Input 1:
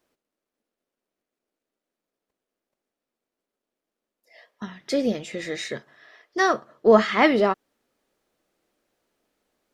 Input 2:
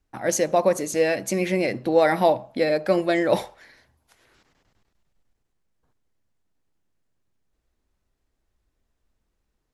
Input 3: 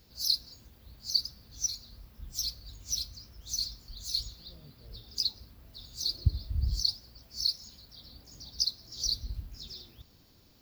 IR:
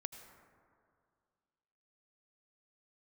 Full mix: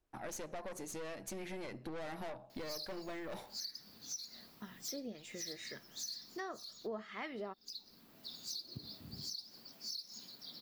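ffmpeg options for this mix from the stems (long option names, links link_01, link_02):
-filter_complex "[0:a]acrossover=split=1200[link_01][link_02];[link_01]aeval=exprs='val(0)*(1-0.5/2+0.5/2*cos(2*PI*2*n/s))':channel_layout=same[link_03];[link_02]aeval=exprs='val(0)*(1-0.5/2-0.5/2*cos(2*PI*2*n/s))':channel_layout=same[link_04];[link_03][link_04]amix=inputs=2:normalize=0,volume=-11dB,asplit=2[link_05][link_06];[1:a]aeval=exprs='(tanh(14.1*val(0)+0.55)-tanh(0.55))/14.1':channel_layout=same,volume=-8dB[link_07];[2:a]highpass=frequency=180:width=0.5412,highpass=frequency=180:width=1.3066,alimiter=limit=-24dB:level=0:latency=1:release=211,asoftclip=type=tanh:threshold=-26.5dB,adelay=2500,volume=1dB[link_08];[link_06]apad=whole_len=578459[link_09];[link_08][link_09]sidechaincompress=threshold=-40dB:ratio=4:attack=16:release=711[link_10];[link_05][link_07][link_10]amix=inputs=3:normalize=0,equalizer=frequency=520:width_type=o:width=0.25:gain=-3.5,acompressor=threshold=-42dB:ratio=4"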